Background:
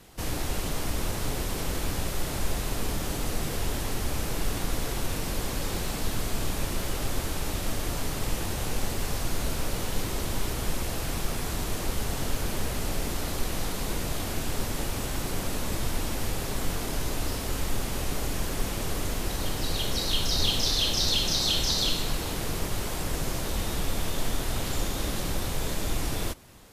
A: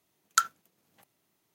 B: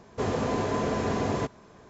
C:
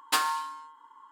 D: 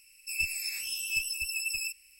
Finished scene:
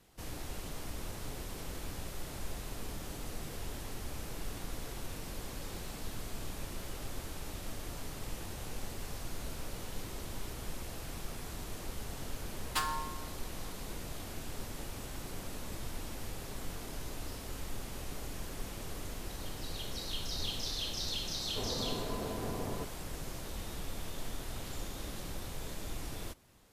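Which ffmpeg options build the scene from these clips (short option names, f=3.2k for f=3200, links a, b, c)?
-filter_complex "[0:a]volume=-12dB[a];[2:a]lowpass=1.3k[b];[3:a]atrim=end=1.11,asetpts=PTS-STARTPTS,volume=-8dB,afade=t=in:d=0.004:c=hsin,afade=t=out:st=1.106:d=0.004:c=hsin,adelay=12630[c];[b]atrim=end=1.89,asetpts=PTS-STARTPTS,volume=-11.5dB,afade=t=in:d=0.004:c=hsin,afade=t=out:st=1.886:d=0.004:c=hsin,adelay=21380[d];[a][c][d]amix=inputs=3:normalize=0"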